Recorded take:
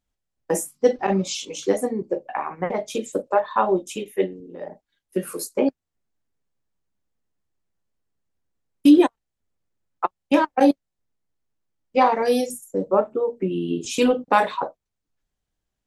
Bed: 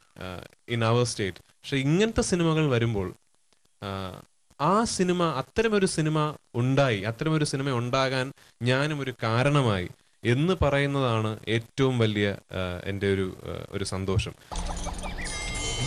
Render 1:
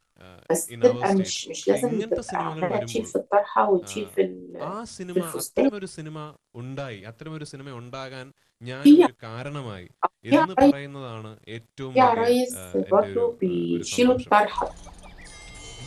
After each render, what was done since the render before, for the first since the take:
mix in bed −11 dB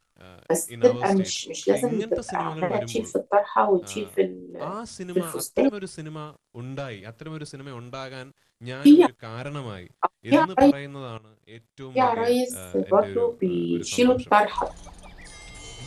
0:11.18–0:12.56: fade in, from −17 dB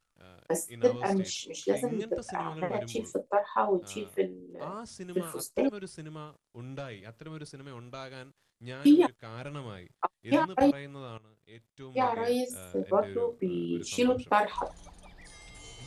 level −7 dB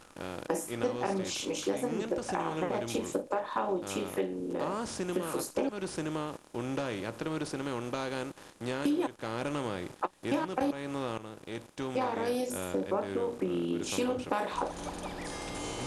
compressor on every frequency bin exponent 0.6
downward compressor 3 to 1, threshold −30 dBFS, peak gain reduction 11.5 dB

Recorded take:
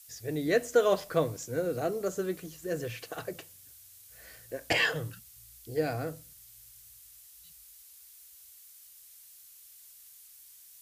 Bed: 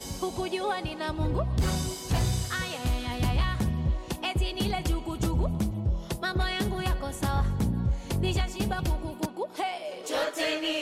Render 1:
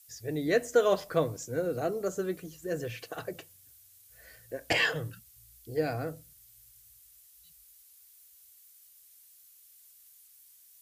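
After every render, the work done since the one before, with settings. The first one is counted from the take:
broadband denoise 6 dB, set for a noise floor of −54 dBFS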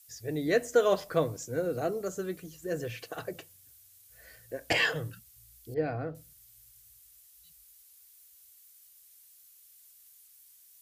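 0:02.01–0:02.54: parametric band 590 Hz −3.5 dB 2.6 octaves
0:05.74–0:06.15: high-frequency loss of the air 330 metres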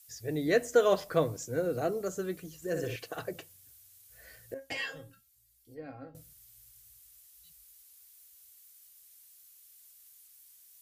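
0:02.56–0:02.96: flutter between parallel walls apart 10.3 metres, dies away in 0.57 s
0:04.54–0:06.15: tuned comb filter 270 Hz, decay 0.18 s, mix 90%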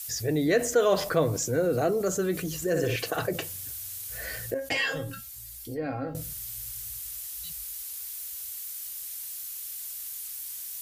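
envelope flattener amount 50%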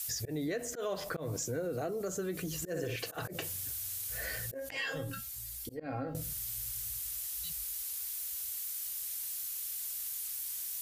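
volume swells 177 ms
downward compressor 5 to 1, threshold −34 dBFS, peak gain reduction 14 dB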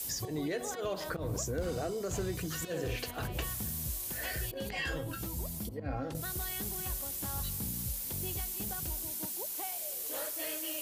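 mix in bed −13.5 dB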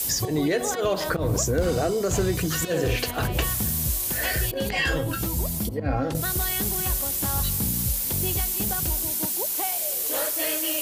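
level +11.5 dB

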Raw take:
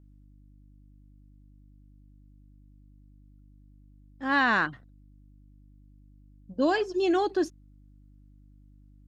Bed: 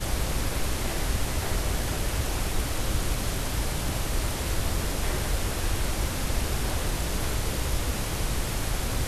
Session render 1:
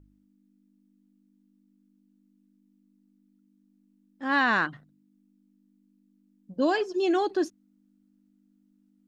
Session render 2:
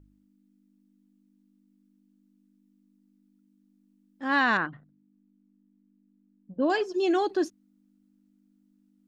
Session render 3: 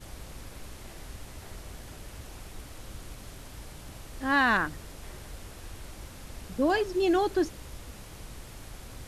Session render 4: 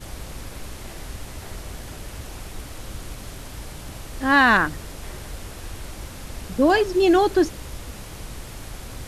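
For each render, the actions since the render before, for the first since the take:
hum removal 50 Hz, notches 3
0:04.57–0:06.70: high-frequency loss of the air 480 metres
mix in bed −16 dB
level +8 dB

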